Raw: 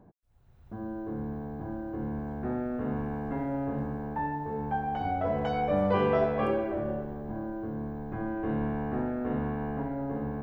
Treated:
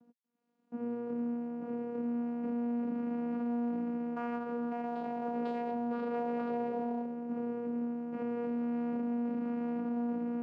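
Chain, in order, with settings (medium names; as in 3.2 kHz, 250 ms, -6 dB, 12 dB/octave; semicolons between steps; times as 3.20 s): companding laws mixed up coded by A; vocoder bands 8, saw 238 Hz; peak limiter -31 dBFS, peak gain reduction 11.5 dB; trim +2.5 dB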